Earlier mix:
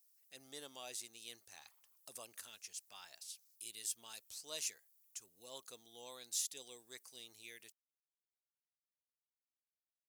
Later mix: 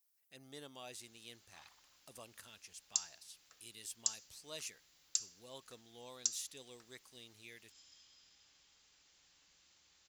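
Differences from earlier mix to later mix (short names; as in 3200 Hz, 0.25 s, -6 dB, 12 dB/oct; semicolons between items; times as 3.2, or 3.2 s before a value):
speech: add tone controls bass +9 dB, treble -7 dB; first sound: unmuted; second sound +10.0 dB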